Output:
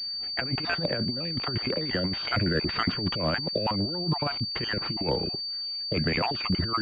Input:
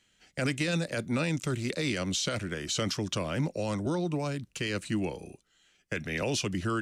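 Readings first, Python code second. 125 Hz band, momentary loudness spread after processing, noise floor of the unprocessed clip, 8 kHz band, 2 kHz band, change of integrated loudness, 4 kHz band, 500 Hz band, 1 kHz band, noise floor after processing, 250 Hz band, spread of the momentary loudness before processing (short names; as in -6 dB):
+2.0 dB, 3 LU, -69 dBFS, under -20 dB, +3.0 dB, +4.0 dB, +9.5 dB, +2.0 dB, +7.0 dB, -34 dBFS, +1.0 dB, 6 LU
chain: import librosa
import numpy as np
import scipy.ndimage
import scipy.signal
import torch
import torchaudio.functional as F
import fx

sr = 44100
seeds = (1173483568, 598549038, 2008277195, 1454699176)

y = fx.spec_dropout(x, sr, seeds[0], share_pct=33)
y = fx.over_compress(y, sr, threshold_db=-35.0, ratio=-0.5)
y = fx.pwm(y, sr, carrier_hz=4600.0)
y = y * librosa.db_to_amplitude(8.5)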